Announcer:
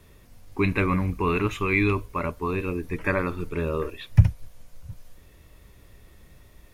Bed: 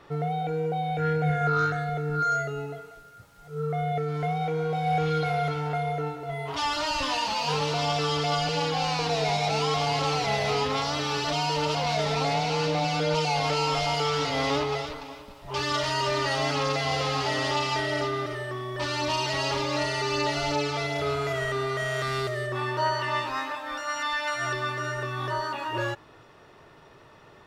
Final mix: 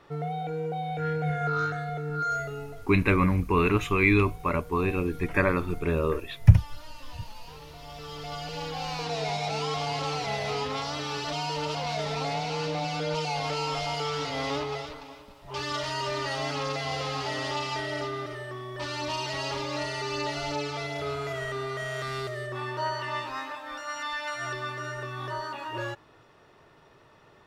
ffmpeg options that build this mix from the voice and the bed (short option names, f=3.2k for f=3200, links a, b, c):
-filter_complex "[0:a]adelay=2300,volume=1dB[a];[1:a]volume=12dB,afade=t=out:st=2.56:d=0.58:silence=0.149624,afade=t=in:st=7.82:d=1.39:silence=0.16788[b];[a][b]amix=inputs=2:normalize=0"